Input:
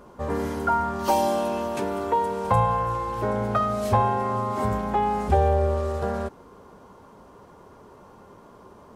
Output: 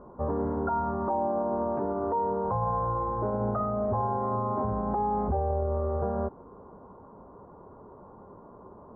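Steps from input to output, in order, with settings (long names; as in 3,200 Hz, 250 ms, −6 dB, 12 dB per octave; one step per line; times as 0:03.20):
inverse Chebyshev low-pass filter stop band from 3,000 Hz, stop band 50 dB
brickwall limiter −20.5 dBFS, peak gain reduction 11 dB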